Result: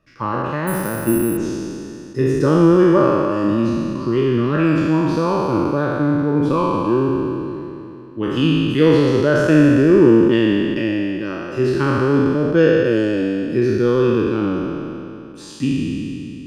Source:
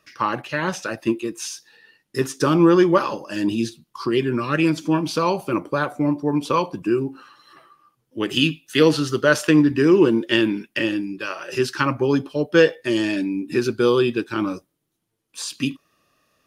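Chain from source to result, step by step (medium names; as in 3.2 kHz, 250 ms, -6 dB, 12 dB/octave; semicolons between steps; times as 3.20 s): spectral sustain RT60 2.79 s; 0.67–1.37 s: careless resampling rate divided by 4×, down filtered, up zero stuff; tilt EQ -3.5 dB/octave; trim -5 dB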